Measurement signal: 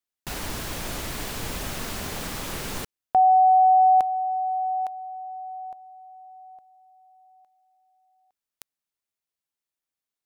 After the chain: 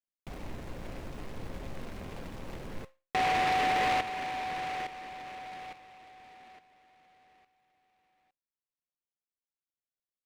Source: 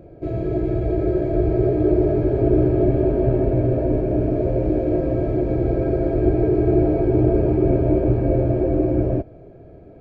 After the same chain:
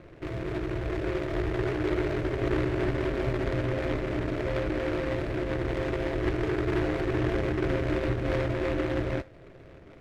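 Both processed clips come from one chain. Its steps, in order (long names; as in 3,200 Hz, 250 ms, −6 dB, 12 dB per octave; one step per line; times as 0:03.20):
running median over 25 samples
in parallel at −2 dB: downward compressor, threshold −31 dBFS
on the sum: tuned comb filter 530 Hz, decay 0.3 s, harmonics all, mix 70%
short delay modulated by noise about 1,300 Hz, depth 0.13 ms
level −1.5 dB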